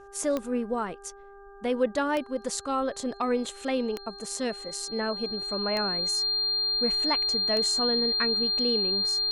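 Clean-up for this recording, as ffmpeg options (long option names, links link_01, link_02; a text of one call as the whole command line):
ffmpeg -i in.wav -af "adeclick=threshold=4,bandreject=frequency=398.5:width_type=h:width=4,bandreject=frequency=797:width_type=h:width=4,bandreject=frequency=1195.5:width_type=h:width=4,bandreject=frequency=1594:width_type=h:width=4,bandreject=frequency=4200:width=30" out.wav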